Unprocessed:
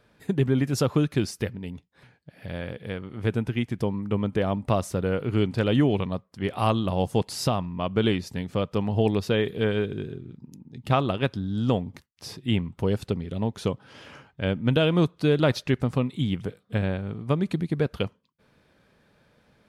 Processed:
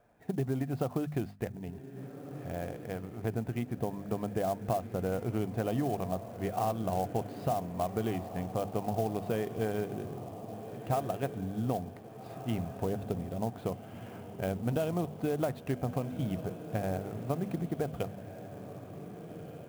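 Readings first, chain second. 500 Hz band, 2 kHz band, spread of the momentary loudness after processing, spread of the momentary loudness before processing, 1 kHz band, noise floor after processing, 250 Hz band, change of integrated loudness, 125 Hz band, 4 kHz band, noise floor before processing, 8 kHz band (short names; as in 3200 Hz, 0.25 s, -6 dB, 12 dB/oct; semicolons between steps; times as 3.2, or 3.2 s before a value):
-7.0 dB, -12.5 dB, 13 LU, 13 LU, -4.0 dB, -47 dBFS, -9.0 dB, -8.5 dB, -9.0 dB, -17.0 dB, -65 dBFS, -8.5 dB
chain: bell 710 Hz +14.5 dB 0.37 oct; notches 50/100/150/200/250 Hz; compressor, threshold -21 dBFS, peak gain reduction 10 dB; air absorption 430 m; diffused feedback echo 1.577 s, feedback 49%, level -11 dB; downsampling 11025 Hz; clock jitter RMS 0.028 ms; gain -5.5 dB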